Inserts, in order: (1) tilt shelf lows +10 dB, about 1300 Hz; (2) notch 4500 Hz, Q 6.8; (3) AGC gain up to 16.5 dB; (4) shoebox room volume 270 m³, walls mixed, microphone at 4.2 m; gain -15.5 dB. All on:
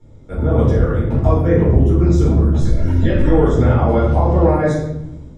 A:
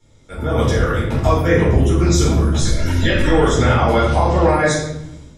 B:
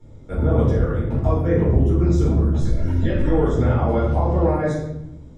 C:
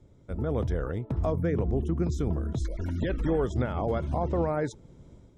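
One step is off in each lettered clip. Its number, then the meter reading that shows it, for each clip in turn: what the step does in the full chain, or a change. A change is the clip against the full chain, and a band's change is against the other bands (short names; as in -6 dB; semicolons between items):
1, 4 kHz band +14.5 dB; 3, loudness change -4.5 LU; 4, echo-to-direct 9.0 dB to none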